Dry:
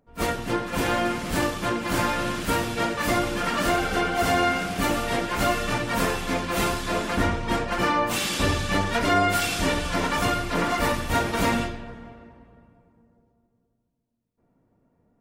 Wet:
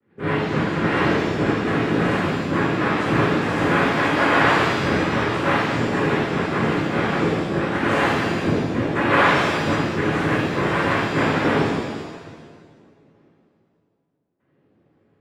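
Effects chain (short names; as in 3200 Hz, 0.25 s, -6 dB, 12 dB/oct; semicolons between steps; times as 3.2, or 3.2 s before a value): formant sharpening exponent 3; LPF 1000 Hz 24 dB/oct; noise vocoder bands 3; shimmer reverb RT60 1.2 s, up +7 st, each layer -8 dB, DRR -9.5 dB; gain -4 dB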